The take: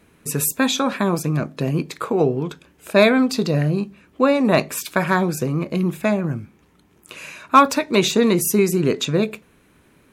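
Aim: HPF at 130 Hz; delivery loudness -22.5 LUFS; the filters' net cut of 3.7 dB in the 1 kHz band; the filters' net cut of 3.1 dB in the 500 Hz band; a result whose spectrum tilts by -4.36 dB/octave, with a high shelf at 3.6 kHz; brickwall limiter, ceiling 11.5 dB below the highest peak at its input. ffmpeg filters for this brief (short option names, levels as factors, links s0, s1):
-af "highpass=130,equalizer=f=500:t=o:g=-3,equalizer=f=1000:t=o:g=-4.5,highshelf=f=3600:g=6.5,volume=1.19,alimiter=limit=0.251:level=0:latency=1"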